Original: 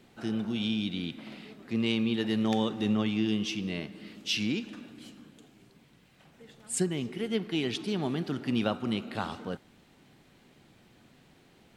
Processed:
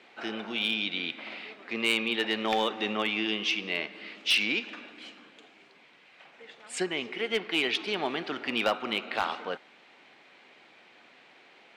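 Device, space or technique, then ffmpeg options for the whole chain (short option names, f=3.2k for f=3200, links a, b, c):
megaphone: -af "highpass=560,lowpass=3.9k,equalizer=f=2.3k:t=o:w=0.46:g=5.5,asoftclip=type=hard:threshold=-25dB,volume=7.5dB"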